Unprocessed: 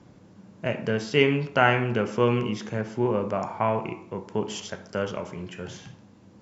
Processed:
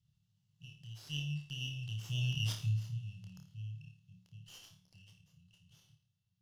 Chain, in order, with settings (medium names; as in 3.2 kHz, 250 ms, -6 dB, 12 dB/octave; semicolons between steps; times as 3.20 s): Doppler pass-by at 2.42 s, 13 m/s, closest 3.3 m; brick-wall FIR band-stop 170–2600 Hz; flutter echo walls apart 4.7 m, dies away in 0.36 s; sliding maximum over 3 samples